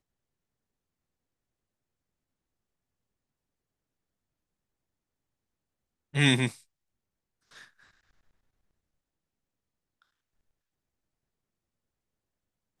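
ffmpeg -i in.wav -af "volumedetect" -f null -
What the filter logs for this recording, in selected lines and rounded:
mean_volume: -39.0 dB
max_volume: -9.2 dB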